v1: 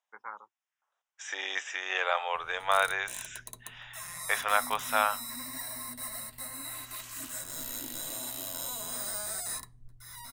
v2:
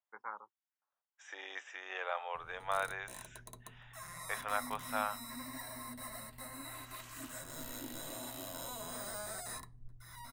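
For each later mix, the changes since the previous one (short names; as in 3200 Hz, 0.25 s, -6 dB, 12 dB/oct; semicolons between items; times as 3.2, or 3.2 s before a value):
second voice -7.5 dB; master: add high shelf 2600 Hz -10.5 dB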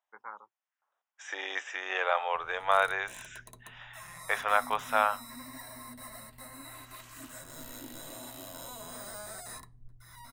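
second voice +10.0 dB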